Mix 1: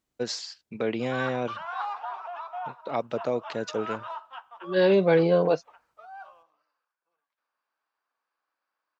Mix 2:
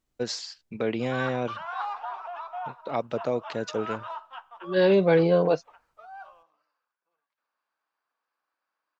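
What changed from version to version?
master: remove high-pass filter 110 Hz 6 dB per octave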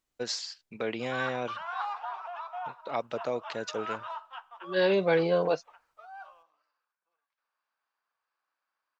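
master: add low-shelf EQ 450 Hz −10 dB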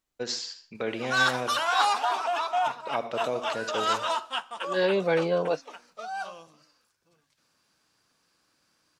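background: remove four-pole ladder band-pass 1,200 Hz, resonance 25%
reverb: on, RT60 0.40 s

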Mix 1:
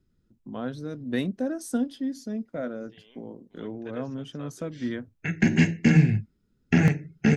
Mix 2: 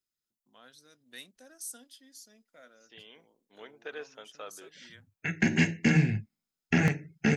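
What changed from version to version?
first voice: add first-order pre-emphasis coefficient 0.97
second voice +6.0 dB
master: add low-shelf EQ 410 Hz −7 dB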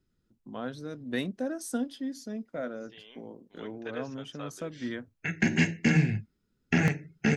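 first voice: remove first-order pre-emphasis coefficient 0.97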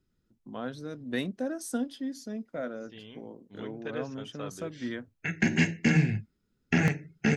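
second voice: remove high-pass filter 530 Hz 12 dB per octave

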